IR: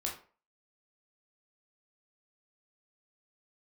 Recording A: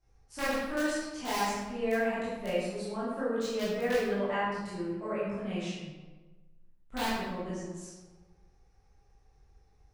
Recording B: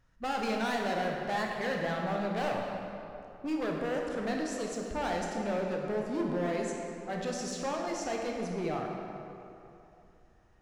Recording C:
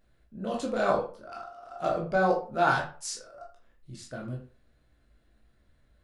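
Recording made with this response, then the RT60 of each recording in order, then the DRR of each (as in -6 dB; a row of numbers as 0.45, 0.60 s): C; 1.3, 2.8, 0.40 s; -11.0, -0.5, -2.0 dB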